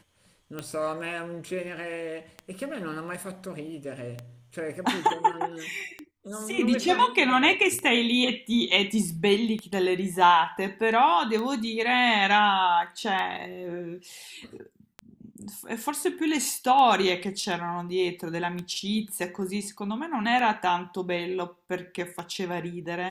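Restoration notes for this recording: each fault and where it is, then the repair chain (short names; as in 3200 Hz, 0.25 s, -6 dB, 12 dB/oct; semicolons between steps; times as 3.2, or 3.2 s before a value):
tick 33 1/3 rpm -20 dBFS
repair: de-click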